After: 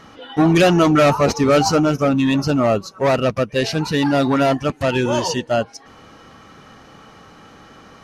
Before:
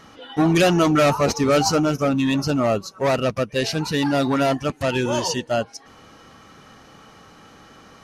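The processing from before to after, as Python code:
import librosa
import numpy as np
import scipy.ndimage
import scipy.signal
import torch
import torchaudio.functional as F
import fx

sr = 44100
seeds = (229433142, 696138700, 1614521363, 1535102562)

y = fx.high_shelf(x, sr, hz=5000.0, db=-6.0)
y = y * librosa.db_to_amplitude(3.5)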